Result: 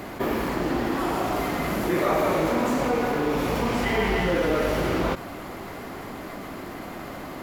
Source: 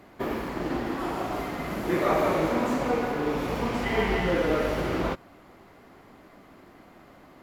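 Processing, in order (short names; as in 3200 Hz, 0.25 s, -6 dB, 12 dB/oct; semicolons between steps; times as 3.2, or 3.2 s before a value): high shelf 7100 Hz +6 dB; fast leveller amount 50%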